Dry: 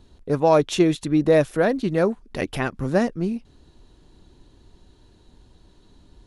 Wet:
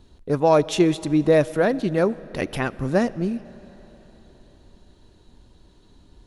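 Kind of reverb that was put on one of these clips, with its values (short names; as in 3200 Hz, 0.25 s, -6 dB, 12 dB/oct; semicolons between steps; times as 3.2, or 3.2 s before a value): digital reverb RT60 4.4 s, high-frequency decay 0.85×, pre-delay 30 ms, DRR 19 dB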